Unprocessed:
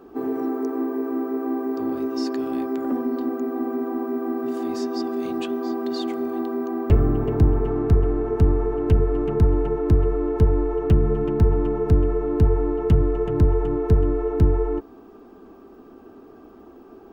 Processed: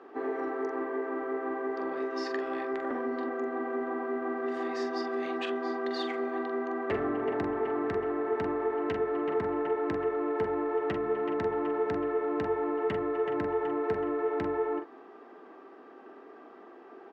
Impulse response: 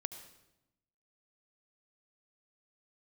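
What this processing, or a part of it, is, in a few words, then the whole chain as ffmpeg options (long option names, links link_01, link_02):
intercom: -filter_complex "[0:a]highpass=480,lowpass=3600,equalizer=frequency=1900:width_type=o:width=0.29:gain=11,asoftclip=type=tanh:threshold=-20dB,asplit=2[link_01][link_02];[link_02]adelay=44,volume=-7.5dB[link_03];[link_01][link_03]amix=inputs=2:normalize=0"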